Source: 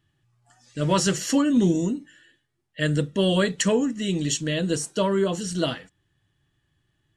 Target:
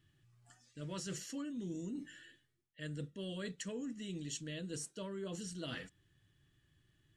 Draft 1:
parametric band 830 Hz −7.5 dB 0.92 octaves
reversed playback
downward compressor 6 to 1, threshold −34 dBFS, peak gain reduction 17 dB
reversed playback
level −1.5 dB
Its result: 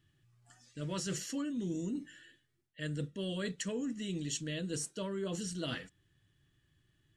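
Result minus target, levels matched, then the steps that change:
downward compressor: peak gain reduction −5.5 dB
change: downward compressor 6 to 1, threshold −40.5 dBFS, peak gain reduction 22.5 dB

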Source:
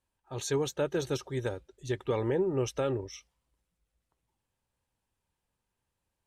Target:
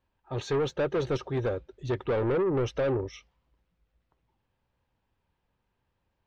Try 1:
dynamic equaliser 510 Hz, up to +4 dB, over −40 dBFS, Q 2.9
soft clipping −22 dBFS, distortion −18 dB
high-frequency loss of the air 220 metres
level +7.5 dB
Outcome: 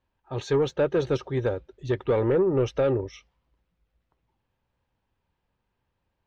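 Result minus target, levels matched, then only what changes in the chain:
soft clipping: distortion −9 dB
change: soft clipping −30 dBFS, distortion −9 dB

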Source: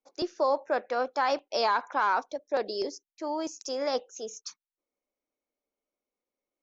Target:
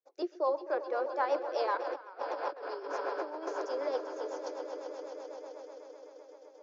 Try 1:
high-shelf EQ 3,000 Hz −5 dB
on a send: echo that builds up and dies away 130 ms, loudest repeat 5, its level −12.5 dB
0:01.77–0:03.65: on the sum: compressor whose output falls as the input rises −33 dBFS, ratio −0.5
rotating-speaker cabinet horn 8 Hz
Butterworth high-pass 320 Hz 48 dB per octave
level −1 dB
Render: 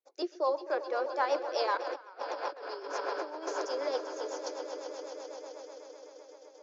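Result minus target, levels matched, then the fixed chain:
8,000 Hz band +8.5 dB
high-shelf EQ 3,000 Hz −16.5 dB
on a send: echo that builds up and dies away 130 ms, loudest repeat 5, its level −12.5 dB
0:01.77–0:03.65: on the sum: compressor whose output falls as the input rises −33 dBFS, ratio −0.5
rotating-speaker cabinet horn 8 Hz
Butterworth high-pass 320 Hz 48 dB per octave
level −1 dB

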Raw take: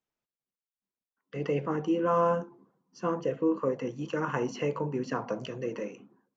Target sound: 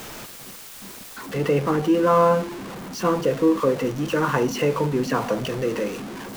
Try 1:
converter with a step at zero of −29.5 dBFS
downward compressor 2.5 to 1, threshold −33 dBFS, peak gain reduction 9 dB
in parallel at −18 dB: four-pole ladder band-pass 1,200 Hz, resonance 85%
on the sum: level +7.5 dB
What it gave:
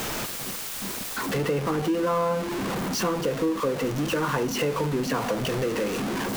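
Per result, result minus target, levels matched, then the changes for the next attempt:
downward compressor: peak gain reduction +9 dB; converter with a step at zero: distortion +6 dB
remove: downward compressor 2.5 to 1, threshold −33 dBFS, peak gain reduction 9 dB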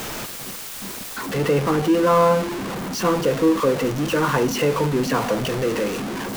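converter with a step at zero: distortion +6 dB
change: converter with a step at zero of −36.5 dBFS

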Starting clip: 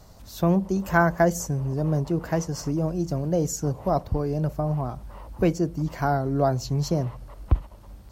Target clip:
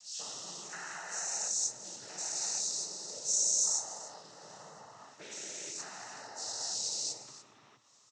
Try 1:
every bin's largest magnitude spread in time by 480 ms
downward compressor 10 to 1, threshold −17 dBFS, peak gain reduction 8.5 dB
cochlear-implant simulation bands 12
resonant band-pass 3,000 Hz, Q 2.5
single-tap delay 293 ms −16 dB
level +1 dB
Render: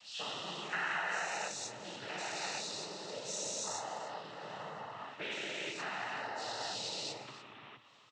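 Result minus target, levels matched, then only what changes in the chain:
8,000 Hz band −7.0 dB
change: resonant band-pass 6,200 Hz, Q 2.5

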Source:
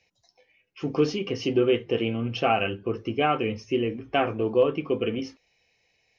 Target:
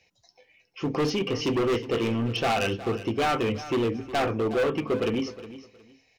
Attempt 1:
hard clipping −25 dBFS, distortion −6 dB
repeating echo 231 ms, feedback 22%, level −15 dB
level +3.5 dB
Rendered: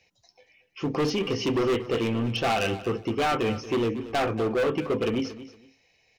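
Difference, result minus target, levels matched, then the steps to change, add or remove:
echo 132 ms early
change: repeating echo 363 ms, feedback 22%, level −15 dB

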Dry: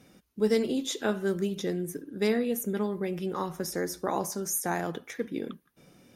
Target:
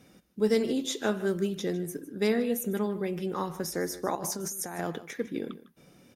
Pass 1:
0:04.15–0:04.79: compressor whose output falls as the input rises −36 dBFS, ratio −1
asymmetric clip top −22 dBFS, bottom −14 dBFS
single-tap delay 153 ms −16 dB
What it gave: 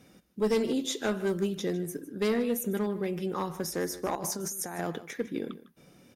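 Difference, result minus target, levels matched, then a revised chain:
asymmetric clip: distortion +14 dB
0:04.15–0:04.79: compressor whose output falls as the input rises −36 dBFS, ratio −1
asymmetric clip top −10.5 dBFS, bottom −14 dBFS
single-tap delay 153 ms −16 dB

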